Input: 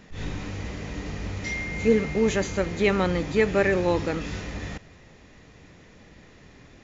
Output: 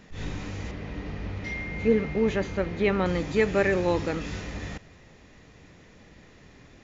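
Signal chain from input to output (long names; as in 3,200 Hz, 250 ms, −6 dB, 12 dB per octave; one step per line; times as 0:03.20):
0:00.71–0:03.06: high-frequency loss of the air 180 metres
level −1.5 dB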